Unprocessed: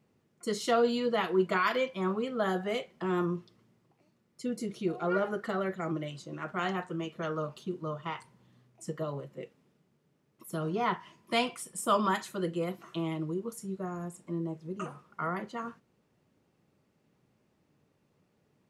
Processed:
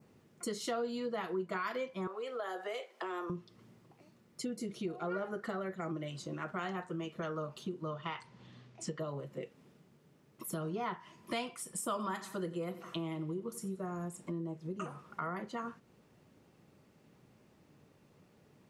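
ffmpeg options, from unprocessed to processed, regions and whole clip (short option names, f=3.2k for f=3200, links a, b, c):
-filter_complex "[0:a]asettb=1/sr,asplit=3[a][b][c];[a]atrim=end=2.074[d];[b]atrim=start=2.07:end=3.3,asetpts=PTS-STARTPTS,afade=t=in:d=0.004:c=qsin,afade=t=out:st=1.226:d=0.004:c=qsin,highpass=f=410:w=0.5412,highpass=f=410:w=1.3066,acompressor=threshold=-35dB:ratio=2:attack=3.2:release=140:knee=1:detection=peak[e];[c]atrim=start=3.296[f];[d][e]acrossfade=d=0.004:c1=hsin:c2=qsin[g];[g][f]acrossfade=d=0.004:c1=qsin:c2=hsin,asettb=1/sr,asplit=3[h][i][j];[h]atrim=end=7.884[k];[i]atrim=start=7.88:end=9,asetpts=PTS-STARTPTS,afade=t=in:d=0.004:c=qsin,afade=t=out:st=1.116:d=0.004:c=qsin,lowpass=5.7k,equalizer=f=3.7k:w=0.58:g=5.5[l];[j]atrim=start=8.996[m];[k][l]acrossfade=d=0.004:c1=hsin:c2=qsin[n];[n][m]acrossfade=d=0.004:c1=qsin:c2=hsin,asettb=1/sr,asplit=3[o][p][q];[o]atrim=end=11.824[r];[p]atrim=start=11.82:end=13.93,asetpts=PTS-STARTPTS,afade=t=in:d=0.004:c=qsin,afade=t=out:st=2.106:d=0.004:c=qsin,bandreject=f=6.8k:w=27,aecho=1:1:90|180|270|360:0.141|0.0593|0.0249|0.0105,atrim=end_sample=93051[s];[q]atrim=start=13.926[t];[r][s]acrossfade=d=0.004:c1=hsin:c2=qsin[u];[u][t]acrossfade=d=0.004:c1=qsin:c2=hsin,adynamicequalizer=threshold=0.00251:dfrequency=3000:dqfactor=1.9:tfrequency=3000:tqfactor=1.9:attack=5:release=100:ratio=0.375:range=3:mode=cutabove:tftype=bell,acompressor=threshold=-47dB:ratio=3,volume=7dB"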